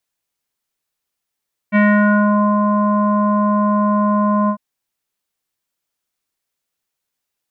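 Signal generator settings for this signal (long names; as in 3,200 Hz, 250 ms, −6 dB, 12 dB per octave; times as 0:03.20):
subtractive voice square G#3 24 dB per octave, low-pass 1,100 Hz, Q 3.3, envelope 1 octave, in 0.70 s, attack 37 ms, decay 0.82 s, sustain −4.5 dB, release 0.08 s, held 2.77 s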